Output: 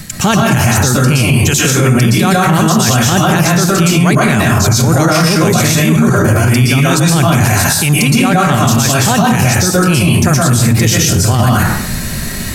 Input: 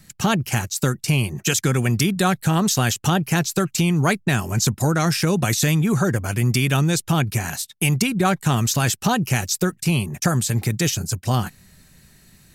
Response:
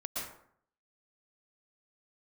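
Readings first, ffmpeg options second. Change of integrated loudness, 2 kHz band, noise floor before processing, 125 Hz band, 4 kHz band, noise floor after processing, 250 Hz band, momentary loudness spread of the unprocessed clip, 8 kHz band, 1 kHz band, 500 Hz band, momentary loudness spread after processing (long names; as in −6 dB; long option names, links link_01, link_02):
+10.5 dB, +11.0 dB, −56 dBFS, +10.5 dB, +10.5 dB, −19 dBFS, +10.5 dB, 4 LU, +10.5 dB, +11.5 dB, +11.0 dB, 1 LU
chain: -filter_complex "[0:a]areverse,acompressor=threshold=-33dB:ratio=6,areverse[link_01];[1:a]atrim=start_sample=2205[link_02];[link_01][link_02]afir=irnorm=-1:irlink=0,alimiter=level_in=31dB:limit=-1dB:release=50:level=0:latency=1,volume=-1dB"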